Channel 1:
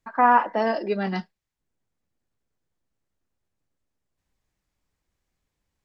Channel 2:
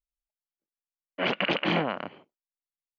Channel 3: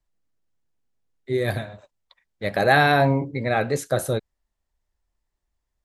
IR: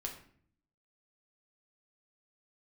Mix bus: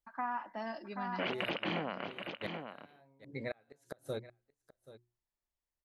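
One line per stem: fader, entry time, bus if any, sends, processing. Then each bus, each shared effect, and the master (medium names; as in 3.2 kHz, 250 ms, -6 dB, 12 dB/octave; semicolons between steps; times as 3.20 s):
-14.0 dB, 0.00 s, no send, echo send -7 dB, peaking EQ 470 Hz -13.5 dB 0.53 oct; expander -43 dBFS
-2.0 dB, 0.00 s, no send, echo send -14.5 dB, none
-11.5 dB, 0.00 s, no send, echo send -17.5 dB, bass shelf 110 Hz -8 dB; hum notches 60/120/180/240/300/360 Hz; inverted gate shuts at -14 dBFS, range -34 dB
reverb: none
echo: delay 780 ms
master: compression 5:1, threshold -33 dBFS, peak gain reduction 9 dB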